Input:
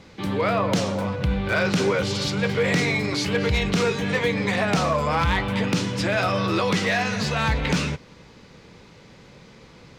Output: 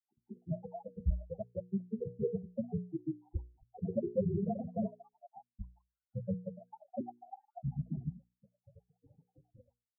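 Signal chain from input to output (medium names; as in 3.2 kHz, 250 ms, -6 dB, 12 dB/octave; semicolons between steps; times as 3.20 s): random holes in the spectrogram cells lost 81%; steep low-pass 610 Hz 48 dB/octave; loudest bins only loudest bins 4; granulator 97 ms, grains 24 per s, spray 292 ms, pitch spread up and down by 3 st; hum notches 60/120/180/240/300/360/420/480 Hz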